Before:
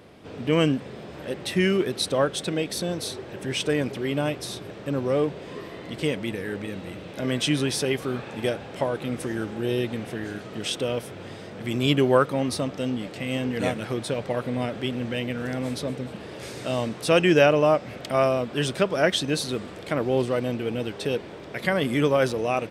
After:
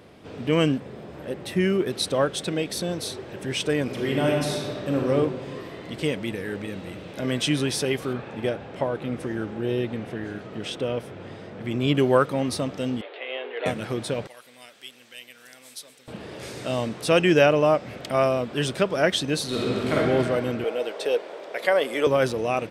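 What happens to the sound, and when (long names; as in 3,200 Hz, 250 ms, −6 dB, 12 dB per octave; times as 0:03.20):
0:00.78–0:01.87: parametric band 4,600 Hz −6 dB 2.8 octaves
0:03.83–0:05.08: thrown reverb, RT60 1.7 s, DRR −1.5 dB
0:08.13–0:11.95: high-shelf EQ 4,200 Hz −11.5 dB
0:13.01–0:13.66: Chebyshev band-pass filter 390–3,700 Hz, order 4
0:14.27–0:16.08: first difference
0:19.47–0:19.93: thrown reverb, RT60 2.8 s, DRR −7.5 dB
0:20.64–0:22.07: high-pass with resonance 530 Hz, resonance Q 2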